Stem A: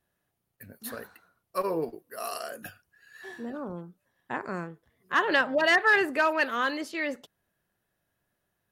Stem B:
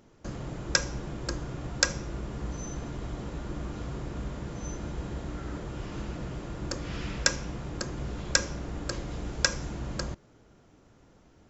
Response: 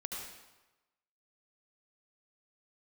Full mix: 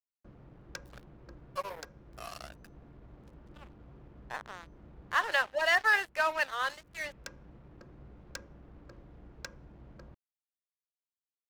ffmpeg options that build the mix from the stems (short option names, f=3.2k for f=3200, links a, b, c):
-filter_complex "[0:a]highpass=f=570:w=0.5412,highpass=f=570:w=1.3066,acrossover=split=7200[a][b];[b]acompressor=threshold=-53dB:ratio=4:attack=1:release=60[c];[a][c]amix=inputs=2:normalize=0,aeval=exprs='sgn(val(0))*max(abs(val(0))-0.0133,0)':c=same,volume=-2.5dB,asplit=2[d][e];[1:a]acrusher=bits=6:mix=0:aa=0.000001,adynamicsmooth=sensitivity=1:basefreq=1.4k,volume=-17dB[f];[e]apad=whole_len=506780[g];[f][g]sidechaincompress=threshold=-35dB:ratio=10:attack=6.2:release=737[h];[d][h]amix=inputs=2:normalize=0"